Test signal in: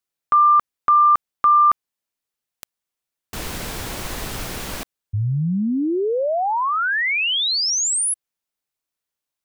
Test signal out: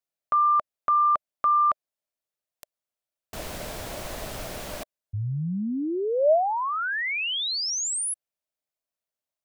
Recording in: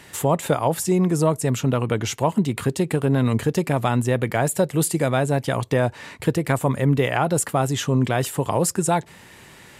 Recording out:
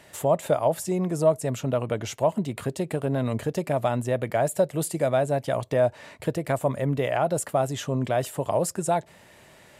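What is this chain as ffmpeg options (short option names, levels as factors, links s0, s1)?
-af "equalizer=f=620:t=o:w=0.42:g=11.5,volume=0.422"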